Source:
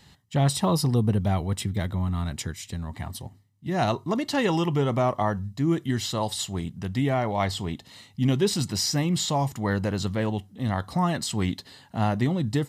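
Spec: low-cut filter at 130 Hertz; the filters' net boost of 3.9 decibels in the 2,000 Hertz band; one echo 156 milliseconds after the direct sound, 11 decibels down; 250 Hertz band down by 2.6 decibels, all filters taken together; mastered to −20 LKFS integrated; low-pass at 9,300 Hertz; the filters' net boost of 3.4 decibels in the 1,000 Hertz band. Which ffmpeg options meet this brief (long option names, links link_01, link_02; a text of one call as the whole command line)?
ffmpeg -i in.wav -af "highpass=130,lowpass=9300,equalizer=frequency=250:width_type=o:gain=-3,equalizer=frequency=1000:width_type=o:gain=4,equalizer=frequency=2000:width_type=o:gain=3.5,aecho=1:1:156:0.282,volume=6.5dB" out.wav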